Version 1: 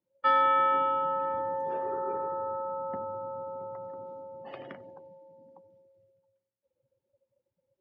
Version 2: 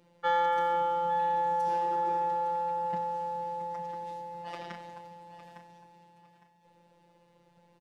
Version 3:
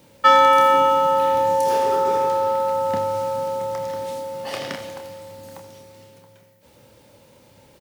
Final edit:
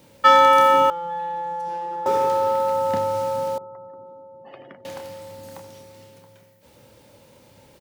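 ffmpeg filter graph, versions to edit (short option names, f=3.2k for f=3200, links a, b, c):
-filter_complex "[2:a]asplit=3[a][b][c];[a]atrim=end=0.902[d];[1:a]atrim=start=0.898:end=2.062[e];[b]atrim=start=2.058:end=3.582[f];[0:a]atrim=start=3.578:end=4.852[g];[c]atrim=start=4.848[h];[d][e]acrossfade=d=0.004:c1=hsin:c2=hsin[i];[i][f]acrossfade=d=0.004:c1=hsin:c2=hsin[j];[j][g]acrossfade=d=0.004:c1=hsin:c2=hsin[k];[k][h]acrossfade=d=0.004:c1=hsin:c2=hsin"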